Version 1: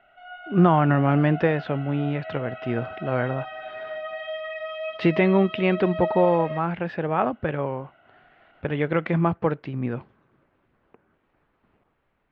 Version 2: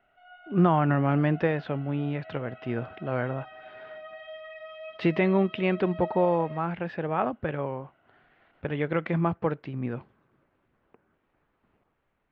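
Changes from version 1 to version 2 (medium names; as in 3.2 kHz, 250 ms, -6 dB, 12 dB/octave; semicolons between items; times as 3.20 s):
speech -4.0 dB; background -10.0 dB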